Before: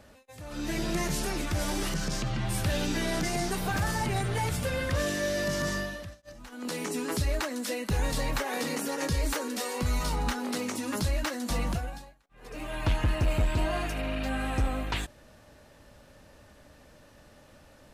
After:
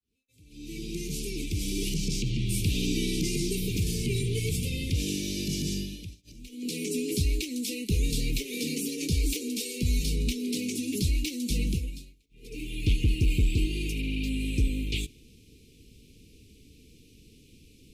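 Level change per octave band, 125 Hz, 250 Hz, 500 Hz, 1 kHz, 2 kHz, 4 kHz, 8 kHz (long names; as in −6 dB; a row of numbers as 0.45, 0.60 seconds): +2.0 dB, +2.0 dB, −4.5 dB, below −40 dB, −5.5 dB, +2.5 dB, +2.0 dB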